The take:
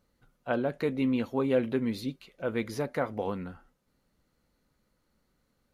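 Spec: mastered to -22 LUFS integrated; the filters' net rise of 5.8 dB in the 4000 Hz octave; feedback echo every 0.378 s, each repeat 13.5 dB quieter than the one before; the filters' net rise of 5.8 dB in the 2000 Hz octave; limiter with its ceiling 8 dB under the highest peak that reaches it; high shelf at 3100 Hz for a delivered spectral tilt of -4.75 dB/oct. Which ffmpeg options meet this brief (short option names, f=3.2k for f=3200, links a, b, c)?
-af "equalizer=f=2k:t=o:g=7.5,highshelf=f=3.1k:g=-5.5,equalizer=f=4k:t=o:g=8.5,alimiter=limit=-19.5dB:level=0:latency=1,aecho=1:1:378|756:0.211|0.0444,volume=10dB"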